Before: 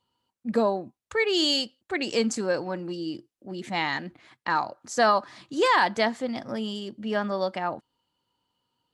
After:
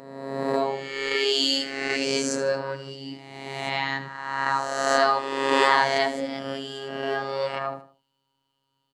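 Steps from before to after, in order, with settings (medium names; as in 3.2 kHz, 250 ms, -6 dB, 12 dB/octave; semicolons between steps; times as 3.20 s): reverse spectral sustain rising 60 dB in 1.36 s; feedback delay 76 ms, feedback 32%, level -13 dB; robot voice 136 Hz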